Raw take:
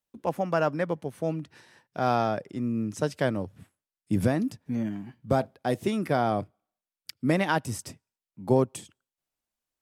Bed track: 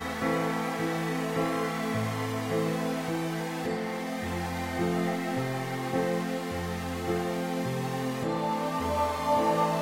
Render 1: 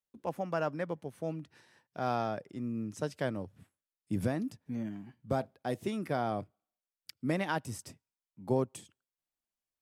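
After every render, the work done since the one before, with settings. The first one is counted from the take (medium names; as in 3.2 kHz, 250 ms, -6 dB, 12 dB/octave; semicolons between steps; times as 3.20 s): trim -7.5 dB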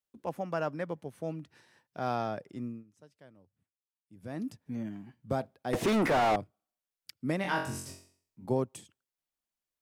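2.63–4.44 s: dip -22.5 dB, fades 0.21 s; 5.73–6.36 s: overdrive pedal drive 38 dB, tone 1.8 kHz, clips at -18.5 dBFS; 7.42–8.46 s: flutter echo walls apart 3.8 m, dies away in 0.5 s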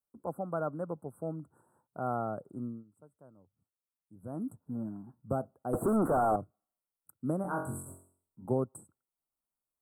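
Chebyshev band-stop 1.4–8 kHz, order 5; dynamic bell 930 Hz, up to -6 dB, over -50 dBFS, Q 5.6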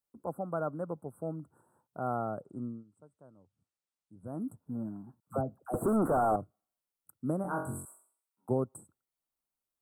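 2.42–4.26 s: steep low-pass 9.7 kHz; 5.20–5.74 s: phase dispersion lows, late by 75 ms, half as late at 670 Hz; 7.85–8.49 s: Chebyshev high-pass 1.2 kHz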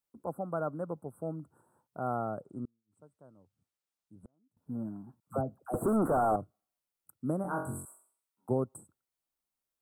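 2.65–4.57 s: inverted gate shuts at -39 dBFS, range -37 dB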